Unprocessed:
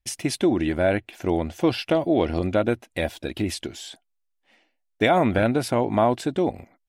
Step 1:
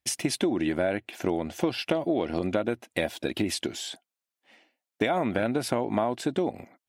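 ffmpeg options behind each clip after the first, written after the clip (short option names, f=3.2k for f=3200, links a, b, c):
-af "highpass=140,acompressor=threshold=-25dB:ratio=6,volume=2.5dB"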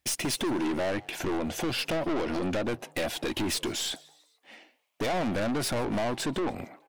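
-filter_complex "[0:a]aeval=exprs='(tanh(50.1*val(0)+0.2)-tanh(0.2))/50.1':c=same,asplit=4[a][b][c][d];[b]adelay=147,afreqshift=150,volume=-24dB[e];[c]adelay=294,afreqshift=300,volume=-29.7dB[f];[d]adelay=441,afreqshift=450,volume=-35.4dB[g];[a][e][f][g]amix=inputs=4:normalize=0,volume=7.5dB"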